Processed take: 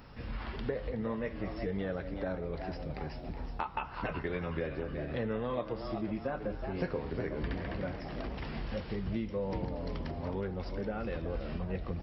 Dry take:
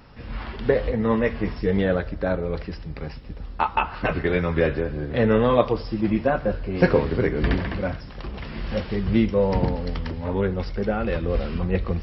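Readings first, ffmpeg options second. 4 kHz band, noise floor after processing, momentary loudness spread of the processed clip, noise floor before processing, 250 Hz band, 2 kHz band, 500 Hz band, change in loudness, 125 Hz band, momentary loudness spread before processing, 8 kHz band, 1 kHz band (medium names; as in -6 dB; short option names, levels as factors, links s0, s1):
-12.0 dB, -44 dBFS, 5 LU, -38 dBFS, -13.0 dB, -13.5 dB, -13.5 dB, -13.5 dB, -12.5 dB, 14 LU, no reading, -13.0 dB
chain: -filter_complex "[0:a]asplit=2[s0][s1];[s1]asplit=5[s2][s3][s4][s5][s6];[s2]adelay=370,afreqshift=97,volume=0.251[s7];[s3]adelay=740,afreqshift=194,volume=0.117[s8];[s4]adelay=1110,afreqshift=291,volume=0.0556[s9];[s5]adelay=1480,afreqshift=388,volume=0.026[s10];[s6]adelay=1850,afreqshift=485,volume=0.0123[s11];[s7][s8][s9][s10][s11]amix=inputs=5:normalize=0[s12];[s0][s12]amix=inputs=2:normalize=0,acompressor=threshold=0.0251:ratio=3,crystalizer=i=1.5:c=0,highshelf=f=3800:g=-7,volume=0.668"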